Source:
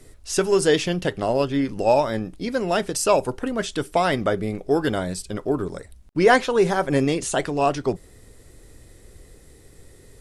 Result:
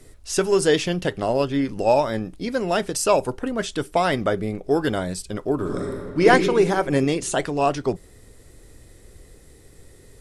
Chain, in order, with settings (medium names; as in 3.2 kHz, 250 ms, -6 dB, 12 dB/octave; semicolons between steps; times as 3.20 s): 3.02–4.64 s: tape noise reduction on one side only decoder only; 5.55–6.25 s: reverb throw, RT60 2.1 s, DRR -3 dB